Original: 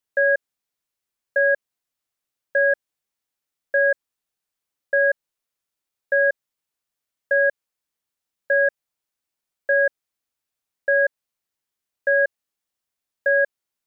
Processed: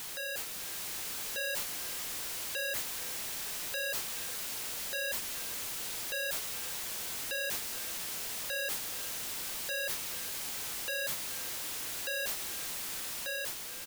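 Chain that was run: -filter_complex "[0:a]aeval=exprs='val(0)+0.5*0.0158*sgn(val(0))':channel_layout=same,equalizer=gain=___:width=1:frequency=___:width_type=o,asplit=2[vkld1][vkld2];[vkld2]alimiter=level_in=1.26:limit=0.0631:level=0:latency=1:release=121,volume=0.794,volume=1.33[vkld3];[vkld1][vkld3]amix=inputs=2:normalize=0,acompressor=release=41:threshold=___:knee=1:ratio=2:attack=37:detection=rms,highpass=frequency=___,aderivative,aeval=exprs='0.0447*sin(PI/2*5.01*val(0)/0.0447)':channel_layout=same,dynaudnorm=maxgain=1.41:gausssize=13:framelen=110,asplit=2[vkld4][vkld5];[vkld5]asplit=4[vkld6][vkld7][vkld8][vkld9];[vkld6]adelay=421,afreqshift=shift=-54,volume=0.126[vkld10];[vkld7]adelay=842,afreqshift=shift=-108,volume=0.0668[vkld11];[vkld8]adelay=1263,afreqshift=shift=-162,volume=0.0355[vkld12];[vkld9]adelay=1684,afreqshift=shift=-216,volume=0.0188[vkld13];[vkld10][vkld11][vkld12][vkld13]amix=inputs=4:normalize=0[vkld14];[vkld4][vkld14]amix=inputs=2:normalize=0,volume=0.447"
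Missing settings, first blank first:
-8.5, 1.6k, 0.0447, 330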